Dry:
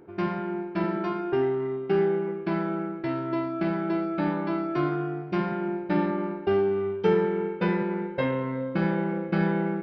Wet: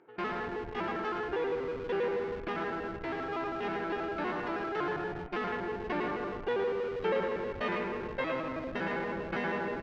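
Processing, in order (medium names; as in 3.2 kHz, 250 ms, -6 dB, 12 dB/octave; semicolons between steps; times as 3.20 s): pitch shift switched off and on +3.5 st, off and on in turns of 80 ms; high-pass 1.3 kHz 6 dB/octave; delay 110 ms -6 dB; in parallel at -7 dB: Schmitt trigger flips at -39 dBFS; on the sum: distance through air 210 m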